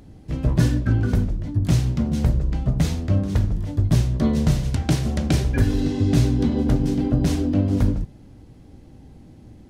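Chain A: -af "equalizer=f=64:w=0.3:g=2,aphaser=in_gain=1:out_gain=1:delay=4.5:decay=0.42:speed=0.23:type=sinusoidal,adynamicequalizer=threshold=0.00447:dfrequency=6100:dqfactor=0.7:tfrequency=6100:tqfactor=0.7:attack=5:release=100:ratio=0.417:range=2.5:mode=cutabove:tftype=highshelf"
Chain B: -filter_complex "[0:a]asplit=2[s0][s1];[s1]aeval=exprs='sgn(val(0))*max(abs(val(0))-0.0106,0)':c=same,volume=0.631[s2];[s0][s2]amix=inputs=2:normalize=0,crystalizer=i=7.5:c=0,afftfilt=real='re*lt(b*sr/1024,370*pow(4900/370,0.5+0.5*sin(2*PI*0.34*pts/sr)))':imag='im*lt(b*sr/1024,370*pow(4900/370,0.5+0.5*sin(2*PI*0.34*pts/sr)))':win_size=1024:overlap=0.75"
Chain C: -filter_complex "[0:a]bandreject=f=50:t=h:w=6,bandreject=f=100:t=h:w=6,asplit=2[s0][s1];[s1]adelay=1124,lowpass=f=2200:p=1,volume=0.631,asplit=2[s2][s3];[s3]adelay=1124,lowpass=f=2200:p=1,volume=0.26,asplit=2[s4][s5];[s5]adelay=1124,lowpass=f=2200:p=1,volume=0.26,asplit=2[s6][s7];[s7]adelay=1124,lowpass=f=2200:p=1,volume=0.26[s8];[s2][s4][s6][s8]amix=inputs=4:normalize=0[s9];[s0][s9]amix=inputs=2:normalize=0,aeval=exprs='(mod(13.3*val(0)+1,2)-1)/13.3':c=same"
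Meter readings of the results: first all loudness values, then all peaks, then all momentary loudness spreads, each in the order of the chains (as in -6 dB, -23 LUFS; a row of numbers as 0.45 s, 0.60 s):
-18.5 LUFS, -17.5 LUFS, -26.5 LUFS; -1.5 dBFS, -1.0 dBFS, -22.5 dBFS; 8 LU, 5 LU, 2 LU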